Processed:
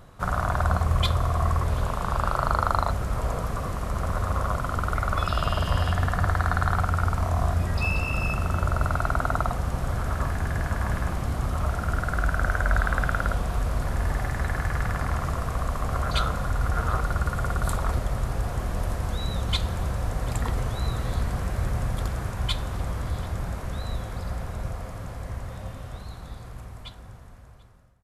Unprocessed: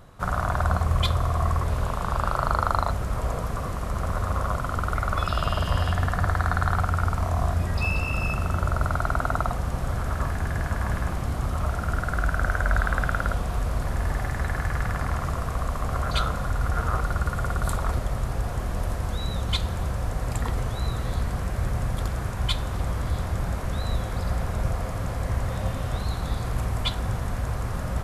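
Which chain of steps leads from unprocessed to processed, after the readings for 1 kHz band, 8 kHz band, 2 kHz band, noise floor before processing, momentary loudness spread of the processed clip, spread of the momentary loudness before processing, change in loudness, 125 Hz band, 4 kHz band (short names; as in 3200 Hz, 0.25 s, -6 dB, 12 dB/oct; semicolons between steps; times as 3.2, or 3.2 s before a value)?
0.0 dB, -0.5 dB, 0.0 dB, -31 dBFS, 9 LU, 5 LU, 0.0 dB, -0.5 dB, -1.0 dB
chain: ending faded out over 6.57 s; echo 0.739 s -23 dB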